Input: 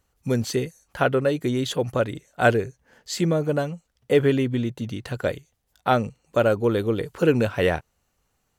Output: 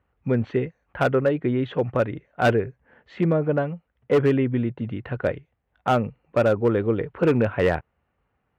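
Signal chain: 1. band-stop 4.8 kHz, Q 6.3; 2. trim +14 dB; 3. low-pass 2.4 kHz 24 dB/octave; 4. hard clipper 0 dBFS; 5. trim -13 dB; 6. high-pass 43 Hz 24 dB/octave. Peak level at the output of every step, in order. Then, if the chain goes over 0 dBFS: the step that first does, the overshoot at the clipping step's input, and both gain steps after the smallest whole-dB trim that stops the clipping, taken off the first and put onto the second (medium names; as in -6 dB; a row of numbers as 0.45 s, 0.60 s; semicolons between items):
-4.5 dBFS, +9.5 dBFS, +9.5 dBFS, 0.0 dBFS, -13.0 dBFS, -8.5 dBFS; step 2, 9.5 dB; step 2 +4 dB, step 5 -3 dB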